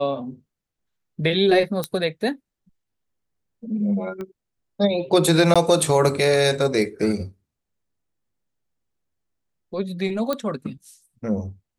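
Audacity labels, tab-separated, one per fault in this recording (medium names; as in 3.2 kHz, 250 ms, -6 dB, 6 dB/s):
1.840000	1.840000	pop -9 dBFS
4.210000	4.210000	pop -21 dBFS
5.540000	5.560000	dropout 16 ms
10.330000	10.330000	pop -11 dBFS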